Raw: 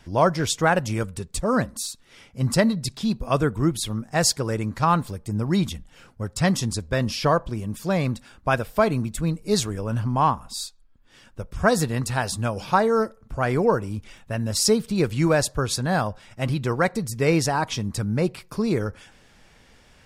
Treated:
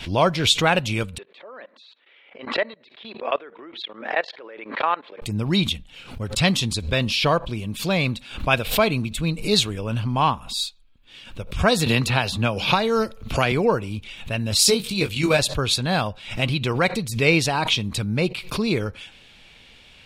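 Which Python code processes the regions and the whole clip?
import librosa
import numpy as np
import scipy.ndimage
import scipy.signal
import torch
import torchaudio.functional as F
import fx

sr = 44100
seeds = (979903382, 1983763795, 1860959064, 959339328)

y = fx.chain(x, sr, fx.cabinet(low_hz=370.0, low_slope=24, high_hz=2800.0, hz=(580.0, 1800.0, 2600.0), db=(3, 6, -5)),
    fx.level_steps(step_db=20), at=(1.18, 5.22))
y = fx.chain(y, sr, fx.peak_eq(hz=8500.0, db=-7.0, octaves=0.31),
    fx.band_squash(depth_pct=100), at=(11.86, 13.52))
y = fx.chain(y, sr, fx.high_shelf(hz=4100.0, db=9.0),
    fx.level_steps(step_db=9),
    fx.doubler(ms=21.0, db=-6), at=(14.59, 15.39))
y = fx.band_shelf(y, sr, hz=3100.0, db=12.0, octaves=1.1)
y = fx.pre_swell(y, sr, db_per_s=110.0)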